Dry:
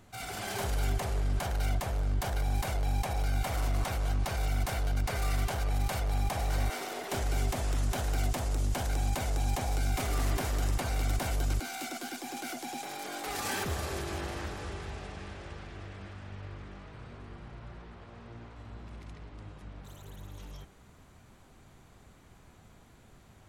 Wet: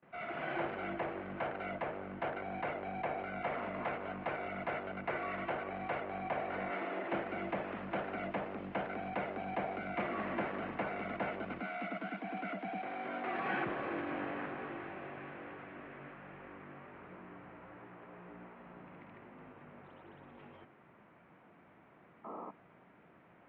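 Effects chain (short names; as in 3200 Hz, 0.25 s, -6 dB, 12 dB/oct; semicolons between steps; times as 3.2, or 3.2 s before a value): painted sound noise, 22.24–22.51, 220–1400 Hz -45 dBFS; gate with hold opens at -49 dBFS; mistuned SSB -54 Hz 220–2600 Hz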